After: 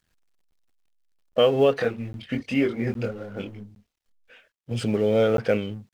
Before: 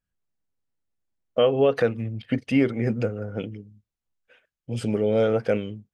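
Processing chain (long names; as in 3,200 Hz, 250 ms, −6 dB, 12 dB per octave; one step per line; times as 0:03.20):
mu-law and A-law mismatch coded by mu
high-shelf EQ 6,600 Hz −5 dB
0:01.77–0:04.71: multi-voice chorus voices 6, 1 Hz, delay 23 ms, depth 3 ms
parametric band 3,800 Hz +4.5 dB 2.5 octaves
regular buffer underruns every 0.81 s, samples 512, zero, from 0:00.51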